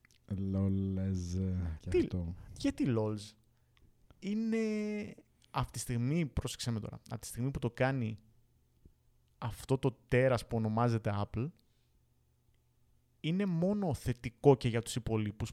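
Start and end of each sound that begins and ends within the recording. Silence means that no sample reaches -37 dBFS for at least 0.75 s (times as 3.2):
4.25–8.13
9.42–11.47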